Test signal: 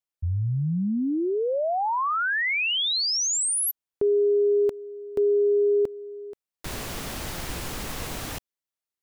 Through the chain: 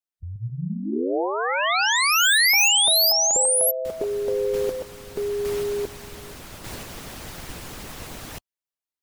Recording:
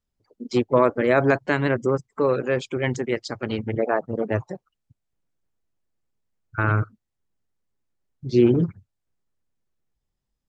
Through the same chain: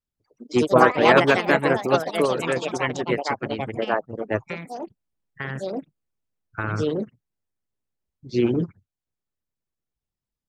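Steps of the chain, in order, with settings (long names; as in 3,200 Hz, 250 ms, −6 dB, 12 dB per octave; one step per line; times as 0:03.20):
delay with pitch and tempo change per echo 176 ms, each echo +4 semitones, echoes 3
harmonic and percussive parts rebalanced harmonic −8 dB
expander for the loud parts 1.5 to 1, over −35 dBFS
level +5.5 dB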